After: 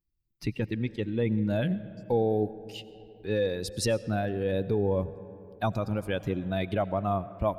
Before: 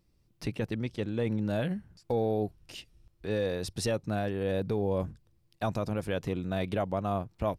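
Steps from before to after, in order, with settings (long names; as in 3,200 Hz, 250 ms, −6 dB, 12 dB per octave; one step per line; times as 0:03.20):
spectral dynamics exaggerated over time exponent 1.5
comb and all-pass reverb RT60 3.2 s, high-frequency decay 0.4×, pre-delay 55 ms, DRR 15.5 dB
level +5 dB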